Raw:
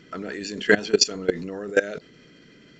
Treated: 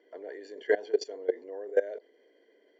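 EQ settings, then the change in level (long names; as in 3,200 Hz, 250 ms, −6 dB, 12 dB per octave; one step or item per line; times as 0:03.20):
moving average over 34 samples
inverse Chebyshev high-pass filter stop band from 170 Hz, stop band 50 dB
0.0 dB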